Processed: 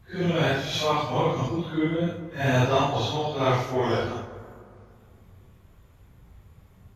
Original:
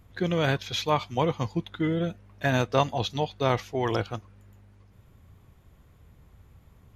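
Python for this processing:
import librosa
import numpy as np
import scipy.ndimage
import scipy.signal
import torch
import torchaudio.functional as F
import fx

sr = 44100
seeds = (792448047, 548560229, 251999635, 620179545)

y = fx.phase_scramble(x, sr, seeds[0], window_ms=200)
y = fx.rev_plate(y, sr, seeds[1], rt60_s=2.3, hf_ratio=0.45, predelay_ms=0, drr_db=9.5)
y = y * 10.0 ** (2.0 / 20.0)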